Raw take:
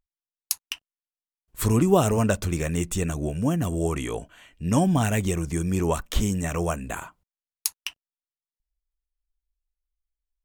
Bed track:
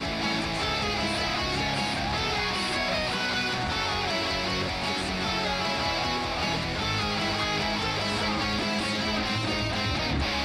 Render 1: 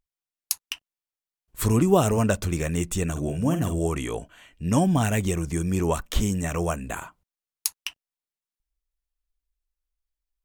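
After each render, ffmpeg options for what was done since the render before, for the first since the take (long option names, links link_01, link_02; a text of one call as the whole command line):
ffmpeg -i in.wav -filter_complex "[0:a]asettb=1/sr,asplit=3[link_01][link_02][link_03];[link_01]atrim=end=3.114[link_04];[link_02]atrim=start=3.11:end=3.79,asetpts=PTS-STARTPTS,afade=type=in:duration=0.004:curve=qsin,afade=type=out:start_time=0.676:duration=0.004:curve=qsin,asplit=2[link_05][link_06];[link_06]adelay=49,volume=-8dB[link_07];[link_05][link_07]amix=inputs=2:normalize=0,atrim=end_sample=29988[link_08];[link_03]atrim=start=3.786[link_09];[link_04][link_08]acrossfade=duration=0.004:curve1=hsin:curve2=qsin[link_10];[link_10][link_09]acrossfade=duration=0.004:curve1=qsin:curve2=hsin" out.wav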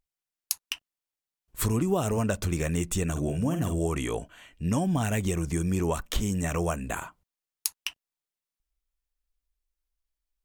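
ffmpeg -i in.wav -af "acompressor=threshold=-23dB:ratio=4" out.wav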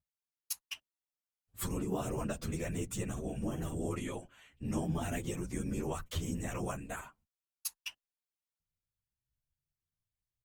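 ffmpeg -i in.wav -filter_complex "[0:a]afftfilt=real='hypot(re,im)*cos(2*PI*random(0))':imag='hypot(re,im)*sin(2*PI*random(1))':win_size=512:overlap=0.75,asplit=2[link_01][link_02];[link_02]adelay=9.9,afreqshift=0.82[link_03];[link_01][link_03]amix=inputs=2:normalize=1" out.wav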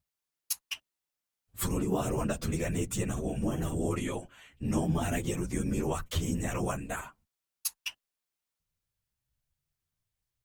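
ffmpeg -i in.wav -af "volume=5.5dB" out.wav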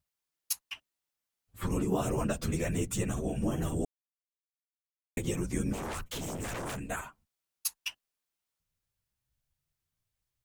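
ffmpeg -i in.wav -filter_complex "[0:a]asettb=1/sr,asplit=3[link_01][link_02][link_03];[link_01]atrim=end=0.664[link_04];[link_02]atrim=start=0.66:end=1.72,asetpts=PTS-STARTPTS,afade=type=in:duration=0.004:curve=qsin,afade=type=out:start_time=1.056:duration=0.004:curve=qsin,acrossover=split=2800[link_05][link_06];[link_06]acompressor=threshold=-49dB:ratio=4:attack=1:release=60[link_07];[link_05][link_07]amix=inputs=2:normalize=0[link_08];[link_03]atrim=start=1.716[link_09];[link_04][link_08]acrossfade=duration=0.004:curve1=hsin:curve2=qsin[link_10];[link_10][link_09]acrossfade=duration=0.004:curve1=qsin:curve2=hsin,asplit=3[link_11][link_12][link_13];[link_11]afade=type=out:start_time=5.72:duration=0.02[link_14];[link_12]aeval=exprs='0.0251*(abs(mod(val(0)/0.0251+3,4)-2)-1)':channel_layout=same,afade=type=in:start_time=5.72:duration=0.02,afade=type=out:start_time=6.79:duration=0.02[link_15];[link_13]afade=type=in:start_time=6.79:duration=0.02[link_16];[link_14][link_15][link_16]amix=inputs=3:normalize=0,asplit=3[link_17][link_18][link_19];[link_17]atrim=end=3.85,asetpts=PTS-STARTPTS,afade=type=out:start_time=3.846:duration=0.004:curve=hsin[link_20];[link_18]atrim=start=3.85:end=5.17,asetpts=PTS-STARTPTS,volume=0[link_21];[link_19]atrim=start=5.17,asetpts=PTS-STARTPTS,afade=type=in:duration=0.004:curve=hsin[link_22];[link_20][link_21][link_22]concat=n=3:v=0:a=1" out.wav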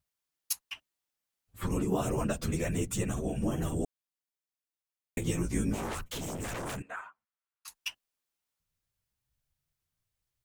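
ffmpeg -i in.wav -filter_complex "[0:a]asettb=1/sr,asplit=3[link_01][link_02][link_03];[link_01]atrim=end=5.204[link_04];[link_02]atrim=start=5.2:end=5.95,asetpts=PTS-STARTPTS,afade=type=in:duration=0.004:curve=qsin,afade=type=out:start_time=0.746:duration=0.004:curve=qsin,asplit=2[link_05][link_06];[link_06]adelay=18,volume=-4dB[link_07];[link_05][link_07]amix=inputs=2:normalize=0,atrim=end_sample=33075[link_08];[link_03]atrim=start=5.946[link_09];[link_04][link_08]acrossfade=duration=0.004:curve1=hsin:curve2=qsin[link_10];[link_10][link_09]acrossfade=duration=0.004:curve1=qsin:curve2=hsin,asettb=1/sr,asplit=3[link_11][link_12][link_13];[link_11]atrim=end=6.824[link_14];[link_12]atrim=start=6.82:end=7.68,asetpts=PTS-STARTPTS,afade=type=in:duration=0.004:curve=qsin,afade=type=out:start_time=0.856:duration=0.004:curve=qsin,bandpass=frequency=1300:width_type=q:width=1.5[link_15];[link_13]atrim=start=7.676[link_16];[link_14][link_15]acrossfade=duration=0.004:curve1=hsin:curve2=qsin[link_17];[link_17][link_16]acrossfade=duration=0.004:curve1=qsin:curve2=hsin" out.wav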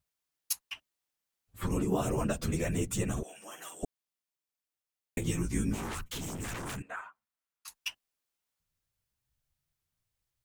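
ffmpeg -i in.wav -filter_complex "[0:a]asettb=1/sr,asplit=3[link_01][link_02][link_03];[link_01]atrim=end=3.234[link_04];[link_02]atrim=start=3.23:end=3.83,asetpts=PTS-STARTPTS,afade=type=in:duration=0.004:curve=qsin,afade=type=out:start_time=0.596:duration=0.004:curve=qsin,highpass=1200[link_05];[link_03]atrim=start=3.826[link_06];[link_04][link_05]acrossfade=duration=0.004:curve1=hsin:curve2=qsin[link_07];[link_07][link_06]acrossfade=duration=0.004:curve1=qsin:curve2=hsin,asettb=1/sr,asplit=3[link_08][link_09][link_10];[link_08]atrim=end=5.264[link_11];[link_09]atrim=start=5.26:end=6.83,asetpts=PTS-STARTPTS,afade=type=in:duration=0.004:curve=qsin,afade=type=out:start_time=1.566:duration=0.004:curve=qsin,equalizer=frequency=580:width=1.5:gain=-7.5[link_12];[link_10]atrim=start=6.826[link_13];[link_11][link_12]acrossfade=duration=0.004:curve1=hsin:curve2=qsin[link_14];[link_14][link_13]acrossfade=duration=0.004:curve1=qsin:curve2=hsin" out.wav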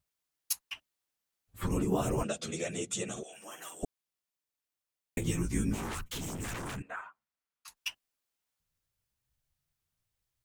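ffmpeg -i in.wav -filter_complex "[0:a]asettb=1/sr,asplit=3[link_01][link_02][link_03];[link_01]atrim=end=2.234[link_04];[link_02]atrim=start=2.23:end=3.33,asetpts=PTS-STARTPTS,afade=type=in:duration=0.004:curve=qsin,afade=type=out:start_time=1.096:duration=0.004:curve=qsin,highpass=250,equalizer=frequency=280:width_type=q:width=4:gain=-8,equalizer=frequency=990:width_type=q:width=4:gain=-10,equalizer=frequency=1700:width_type=q:width=4:gain=-5,equalizer=frequency=3500:width_type=q:width=4:gain=7,equalizer=frequency=6800:width_type=q:width=4:gain=4,lowpass=frequency=9200:width=0.5412,lowpass=frequency=9200:width=1.3066[link_05];[link_03]atrim=start=3.326[link_06];[link_04][link_05]acrossfade=duration=0.004:curve1=hsin:curve2=qsin[link_07];[link_07][link_06]acrossfade=duration=0.004:curve1=qsin:curve2=hsin,asettb=1/sr,asplit=3[link_08][link_09][link_10];[link_08]atrim=end=6.674[link_11];[link_09]atrim=start=6.67:end=7.77,asetpts=PTS-STARTPTS,afade=type=in:duration=0.004:curve=qsin,afade=type=out:start_time=1.096:duration=0.004:curve=qsin,highshelf=frequency=6000:gain=-7[link_12];[link_10]atrim=start=7.766[link_13];[link_11][link_12]acrossfade=duration=0.004:curve1=hsin:curve2=qsin[link_14];[link_14][link_13]acrossfade=duration=0.004:curve1=qsin:curve2=hsin" out.wav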